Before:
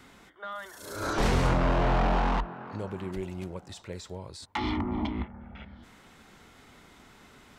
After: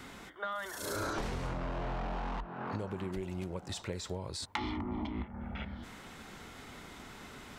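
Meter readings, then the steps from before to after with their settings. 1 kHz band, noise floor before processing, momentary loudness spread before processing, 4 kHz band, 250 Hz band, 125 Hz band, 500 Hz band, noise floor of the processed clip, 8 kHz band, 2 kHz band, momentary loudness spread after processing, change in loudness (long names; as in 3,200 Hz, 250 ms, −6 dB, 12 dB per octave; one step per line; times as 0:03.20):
−8.5 dB, −56 dBFS, 17 LU, −3.5 dB, −7.0 dB, −8.5 dB, −7.5 dB, −51 dBFS, −0.5 dB, −6.0 dB, 12 LU, −9.0 dB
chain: downward compressor 20 to 1, threshold −38 dBFS, peak gain reduction 19 dB
level +5 dB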